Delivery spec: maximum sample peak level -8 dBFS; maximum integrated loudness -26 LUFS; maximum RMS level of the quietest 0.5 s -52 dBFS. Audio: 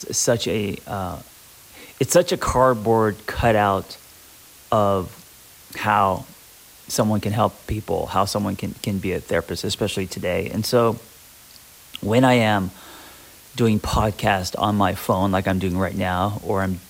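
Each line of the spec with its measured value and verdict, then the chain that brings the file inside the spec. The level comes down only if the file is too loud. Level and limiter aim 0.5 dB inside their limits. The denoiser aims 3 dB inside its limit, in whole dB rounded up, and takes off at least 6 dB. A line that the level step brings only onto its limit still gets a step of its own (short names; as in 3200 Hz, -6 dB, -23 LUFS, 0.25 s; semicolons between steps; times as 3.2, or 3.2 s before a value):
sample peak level -5.0 dBFS: fail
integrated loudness -21.5 LUFS: fail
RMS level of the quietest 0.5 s -47 dBFS: fail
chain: denoiser 6 dB, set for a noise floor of -47 dBFS; gain -5 dB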